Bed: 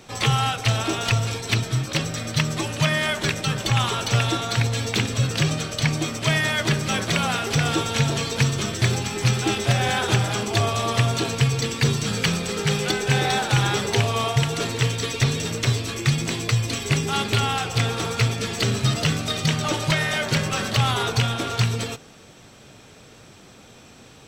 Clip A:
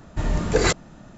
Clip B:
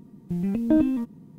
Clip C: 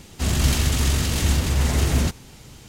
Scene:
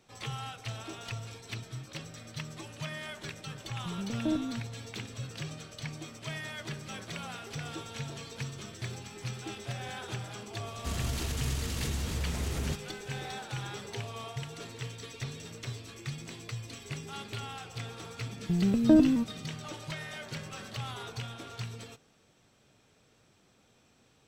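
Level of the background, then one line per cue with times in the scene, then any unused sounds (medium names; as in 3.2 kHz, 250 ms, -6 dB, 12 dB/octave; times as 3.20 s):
bed -18 dB
3.55 s: add B -11 dB
10.65 s: add C -10.5 dB + peak limiter -14.5 dBFS
18.19 s: add B -0.5 dB
not used: A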